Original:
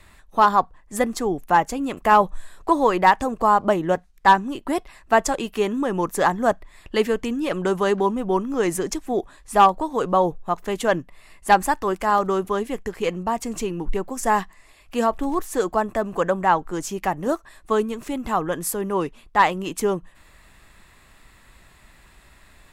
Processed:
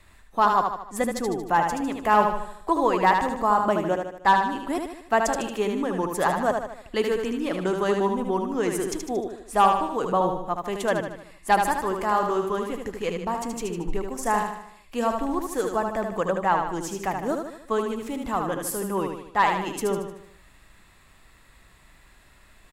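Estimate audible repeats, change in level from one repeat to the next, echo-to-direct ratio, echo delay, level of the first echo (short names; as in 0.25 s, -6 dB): 5, -6.0 dB, -4.0 dB, 76 ms, -5.0 dB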